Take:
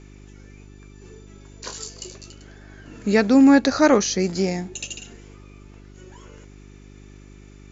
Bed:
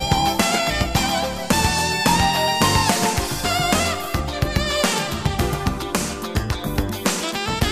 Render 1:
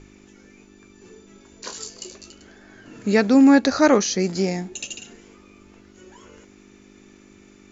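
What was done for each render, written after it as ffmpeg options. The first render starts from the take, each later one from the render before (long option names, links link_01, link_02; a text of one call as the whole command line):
ffmpeg -i in.wav -af "bandreject=frequency=50:width_type=h:width=4,bandreject=frequency=100:width_type=h:width=4,bandreject=frequency=150:width_type=h:width=4" out.wav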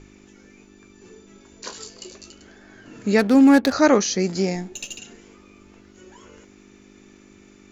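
ffmpeg -i in.wav -filter_complex "[0:a]asettb=1/sr,asplit=3[link_01][link_02][link_03];[link_01]atrim=end=1.694[link_04];[link_02]atrim=start=1.69:end=2.12,asetpts=PTS-STARTPTS,afade=type=in:duration=0.004:curve=qsin,afade=type=out:start_time=0.426:duration=0.004:curve=qsin,equalizer=frequency=6400:width=1.7:gain=-5.5[link_05];[link_03]atrim=start=2.116[link_06];[link_04][link_05]acrossfade=duration=0.004:curve1=hsin:curve2=qsin[link_07];[link_07][link_06]acrossfade=duration=0.004:curve1=qsin:curve2=hsin,asplit=3[link_08][link_09][link_10];[link_08]afade=type=out:start_time=3.18:duration=0.02[link_11];[link_09]adynamicsmooth=sensitivity=5.5:basefreq=690,afade=type=in:start_time=3.18:duration=0.02,afade=type=out:start_time=3.71:duration=0.02[link_12];[link_10]afade=type=in:start_time=3.71:duration=0.02[link_13];[link_11][link_12][link_13]amix=inputs=3:normalize=0,asettb=1/sr,asplit=3[link_14][link_15][link_16];[link_14]atrim=end=4.554[link_17];[link_15]atrim=start=4.55:end=4.99,asetpts=PTS-STARTPTS,afade=type=in:duration=0.004:curve=qsin,afade=type=out:start_time=0.436:duration=0.004:curve=qsin,aeval=exprs='if(lt(val(0),0),0.708*val(0),val(0))':channel_layout=same[link_18];[link_16]atrim=start=4.986[link_19];[link_17][link_18]acrossfade=duration=0.004:curve1=hsin:curve2=qsin[link_20];[link_20][link_19]acrossfade=duration=0.004:curve1=qsin:curve2=hsin" out.wav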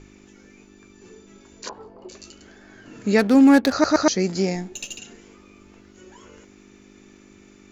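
ffmpeg -i in.wav -filter_complex "[0:a]asettb=1/sr,asplit=3[link_01][link_02][link_03];[link_01]atrim=end=1.694[link_04];[link_02]atrim=start=1.69:end=2.09,asetpts=PTS-STARTPTS,afade=type=in:duration=0.004:curve=qsin,afade=type=out:start_time=0.396:duration=0.004:curve=qsin,lowpass=frequency=860:width_type=q:width=3.1[link_05];[link_03]atrim=start=2.086[link_06];[link_04][link_05]acrossfade=duration=0.004:curve1=hsin:curve2=qsin[link_07];[link_07][link_06]acrossfade=duration=0.004:curve1=qsin:curve2=hsin,asplit=4[link_08][link_09][link_10][link_11];[link_08]atrim=end=3.842[link_12];[link_09]atrim=start=3.718:end=3.842[link_13];[link_10]atrim=start=3.718:end=3.842[link_14];[link_11]atrim=start=4.078[link_15];[link_12][link_13]acrossfade=duration=0.004:curve1=hsin:curve2=hsin[link_16];[link_16][link_14]acrossfade=duration=0.004:curve1=hsin:curve2=hsin[link_17];[link_17][link_15]acrossfade=duration=0.004:curve1=hsin:curve2=hsin" out.wav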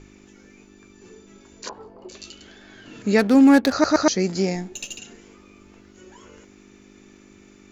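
ffmpeg -i in.wav -filter_complex "[0:a]asettb=1/sr,asplit=3[link_01][link_02][link_03];[link_01]atrim=end=2.144[link_04];[link_02]atrim=start=2.14:end=3.02,asetpts=PTS-STARTPTS,afade=type=in:duration=0.004:curve=qsin,afade=type=out:start_time=0.876:duration=0.004:curve=qsin,equalizer=frequency=3400:width_type=o:width=0.83:gain=9.5[link_05];[link_03]atrim=start=3.016[link_06];[link_04][link_05]acrossfade=duration=0.004:curve1=hsin:curve2=qsin[link_07];[link_07][link_06]acrossfade=duration=0.004:curve1=qsin:curve2=hsin" out.wav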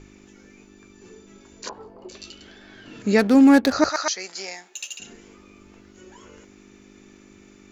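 ffmpeg -i in.wav -filter_complex "[0:a]asettb=1/sr,asplit=3[link_01][link_02][link_03];[link_01]atrim=end=2.124[link_04];[link_02]atrim=start=2.12:end=3,asetpts=PTS-STARTPTS,afade=type=in:duration=0.004:curve=qsin,afade=type=out:start_time=0.876:duration=0.004:curve=qsin,bandreject=frequency=6700:width=8[link_05];[link_03]atrim=start=2.996[link_06];[link_04][link_05]acrossfade=duration=0.004:curve1=hsin:curve2=qsin[link_07];[link_07][link_06]acrossfade=duration=0.004:curve1=qsin:curve2=hsin,asettb=1/sr,asplit=3[link_08][link_09][link_10];[link_08]atrim=end=3.894[link_11];[link_09]atrim=start=3.89:end=5,asetpts=PTS-STARTPTS,afade=type=in:duration=0.004:curve=qsin,afade=type=out:start_time=1.106:duration=0.004:curve=qsin,highpass=1000[link_12];[link_10]atrim=start=4.996[link_13];[link_11][link_12]acrossfade=duration=0.004:curve1=hsin:curve2=qsin[link_14];[link_14][link_13]acrossfade=duration=0.004:curve1=qsin:curve2=hsin" out.wav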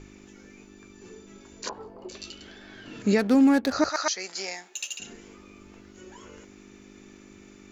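ffmpeg -i in.wav -af "alimiter=limit=-12dB:level=0:latency=1:release=296" out.wav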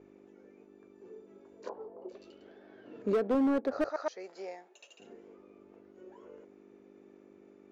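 ffmpeg -i in.wav -af "bandpass=frequency=500:width_type=q:width=1.8:csg=0,asoftclip=type=hard:threshold=-23.5dB" out.wav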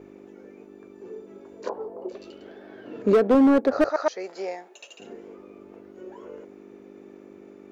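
ffmpeg -i in.wav -af "volume=10.5dB" out.wav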